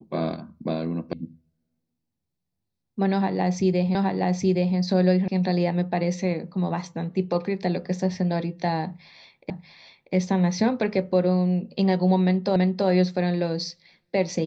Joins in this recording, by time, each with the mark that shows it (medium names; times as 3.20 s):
1.13 s: sound stops dead
3.95 s: repeat of the last 0.82 s
5.28 s: sound stops dead
9.50 s: repeat of the last 0.64 s
12.56 s: repeat of the last 0.33 s